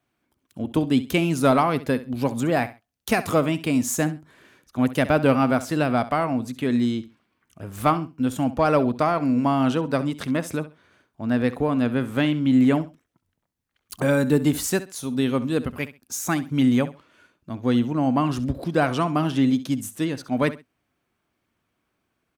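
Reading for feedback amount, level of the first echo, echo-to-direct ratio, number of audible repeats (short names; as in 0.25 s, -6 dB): 23%, -15.5 dB, -15.5 dB, 2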